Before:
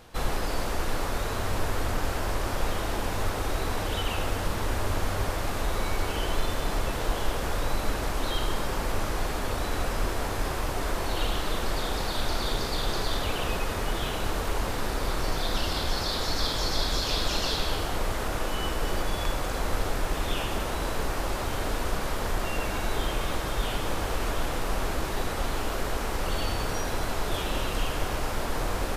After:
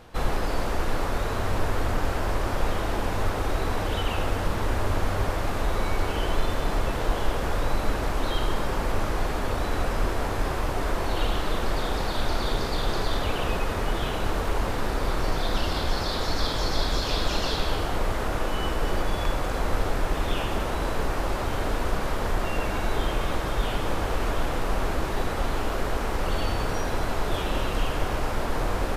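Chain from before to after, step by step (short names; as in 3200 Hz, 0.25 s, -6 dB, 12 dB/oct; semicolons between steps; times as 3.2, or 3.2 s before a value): high shelf 3400 Hz -7.5 dB; gain +3 dB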